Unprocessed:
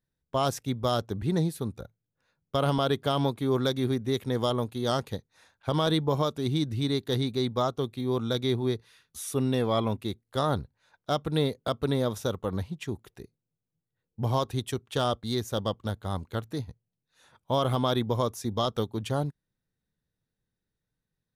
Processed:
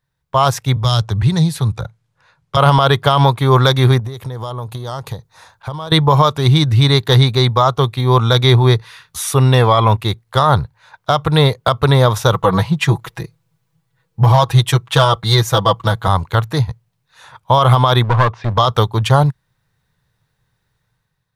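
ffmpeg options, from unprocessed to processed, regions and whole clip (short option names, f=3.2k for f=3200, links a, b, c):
-filter_complex "[0:a]asettb=1/sr,asplit=3[a][b][c];[a]atrim=end=0.764[d];[b]atrim=start=0.76:end=2.57,asetpts=PTS-STARTPTS,afade=t=in:d=0.004:c=qsin,afade=t=out:st=1.806:d=0.004:c=qsin,lowpass=10k,acrossover=split=180|3000[e][f][g];[f]acompressor=threshold=-44dB:ratio=2.5:attack=3.2:release=140:knee=2.83:detection=peak[h];[e][h][g]amix=inputs=3:normalize=0,asoftclip=type=hard:threshold=-22.5dB[i];[c]atrim=start=2.566[j];[d][i]acrossfade=d=0.004:c1=hsin:c2=qsin[k];[k][j]acrossfade=d=0.004:c1=qsin:c2=hsin,asettb=1/sr,asplit=3[l][m][n];[l]atrim=end=3.994[o];[m]atrim=start=3.99:end=5.92,asetpts=PTS-STARTPTS,afade=t=in:d=0.004:c=qsin,afade=t=out:st=1.926:d=0.004:c=qsin,equalizer=f=2.2k:t=o:w=1.7:g=-7.5,acompressor=threshold=-39dB:ratio=20:attack=3.2:release=140:knee=1:detection=peak[p];[n]atrim=start=5.916[q];[o][p]acrossfade=d=0.004:c1=hsin:c2=qsin[r];[r][q]acrossfade=d=0.004:c1=qsin:c2=hsin,asettb=1/sr,asplit=3[s][t][u];[s]atrim=end=12.334[v];[t]atrim=start=12.33:end=16.08,asetpts=PTS-STARTPTS,afade=t=in:d=0.004:c=qsin,afade=t=out:st=3.746:d=0.004:c=qsin,aecho=1:1:6.1:0.94,atrim=end_sample=165375,asoftclip=type=hard:threshold=-15.5dB[w];[u]atrim=start=16.076[x];[v][w]acrossfade=d=0.004:c1=hsin:c2=qsin[y];[y][x]acrossfade=d=0.004:c1=qsin:c2=hsin,asettb=1/sr,asplit=3[z][aa][ab];[z]atrim=end=18.044[ac];[aa]atrim=start=18.04:end=18.58,asetpts=PTS-STARTPTS,afade=t=in:d=0.004:c=qsin,afade=t=out:st=0.536:d=0.004:c=qsin,lowpass=f=3.1k:w=0.5412,lowpass=f=3.1k:w=1.3066,aeval=exprs='clip(val(0),-1,0.02)':c=same[ad];[ab]atrim=start=18.576[ae];[ac][ad]acrossfade=d=0.004:c1=hsin:c2=qsin[af];[af][ae]acrossfade=d=0.004:c1=qsin:c2=hsin,equalizer=f=125:t=o:w=1:g=9,equalizer=f=250:t=o:w=1:g=-10,equalizer=f=1k:t=o:w=1:g=10,equalizer=f=2k:t=o:w=1:g=4,equalizer=f=4k:t=o:w=1:g=3,dynaudnorm=f=160:g=7:m=8dB,alimiter=level_in=8dB:limit=-1dB:release=50:level=0:latency=1,volume=-1dB"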